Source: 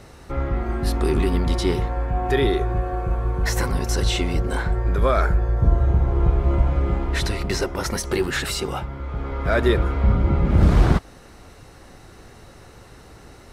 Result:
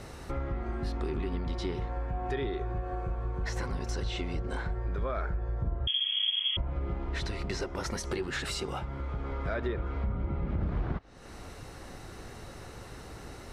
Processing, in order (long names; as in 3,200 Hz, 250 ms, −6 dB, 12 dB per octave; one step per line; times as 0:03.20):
treble cut that deepens with the level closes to 2,500 Hz, closed at −12.5 dBFS
downward compressor 3 to 1, threshold −34 dBFS, peak gain reduction 18 dB
0:05.87–0:06.57: voice inversion scrambler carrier 3,300 Hz